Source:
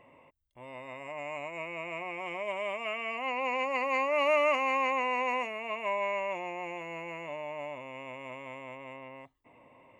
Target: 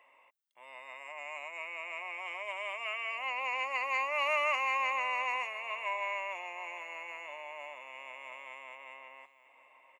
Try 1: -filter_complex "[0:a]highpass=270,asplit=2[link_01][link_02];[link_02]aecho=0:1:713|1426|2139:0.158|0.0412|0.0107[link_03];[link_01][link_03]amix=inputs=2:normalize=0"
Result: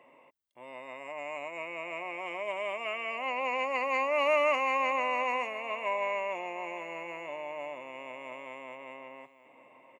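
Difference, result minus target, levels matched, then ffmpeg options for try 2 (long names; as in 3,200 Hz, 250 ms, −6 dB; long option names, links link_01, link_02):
250 Hz band +16.5 dB
-filter_complex "[0:a]highpass=1000,asplit=2[link_01][link_02];[link_02]aecho=0:1:713|1426|2139:0.158|0.0412|0.0107[link_03];[link_01][link_03]amix=inputs=2:normalize=0"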